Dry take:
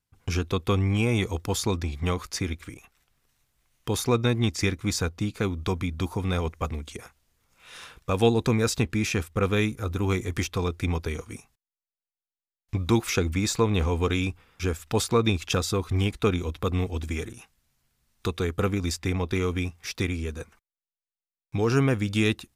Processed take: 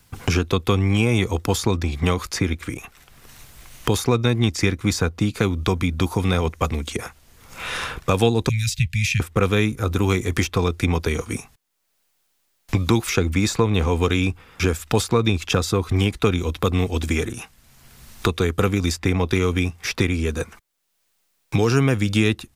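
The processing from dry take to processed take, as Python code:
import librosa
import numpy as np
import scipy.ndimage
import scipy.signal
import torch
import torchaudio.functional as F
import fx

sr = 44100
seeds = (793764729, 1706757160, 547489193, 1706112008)

y = fx.cheby2_bandstop(x, sr, low_hz=300.0, high_hz=1100.0, order=4, stop_db=50, at=(8.49, 9.2))
y = fx.band_squash(y, sr, depth_pct=70)
y = y * 10.0 ** (5.5 / 20.0)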